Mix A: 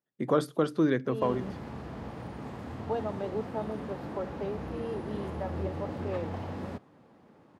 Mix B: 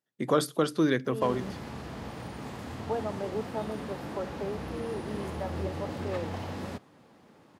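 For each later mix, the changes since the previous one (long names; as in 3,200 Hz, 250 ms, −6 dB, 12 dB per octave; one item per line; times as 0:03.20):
second voice: add Gaussian smoothing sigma 3.6 samples
master: add high-shelf EQ 2,500 Hz +11.5 dB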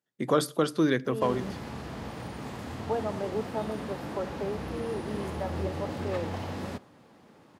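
reverb: on, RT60 0.35 s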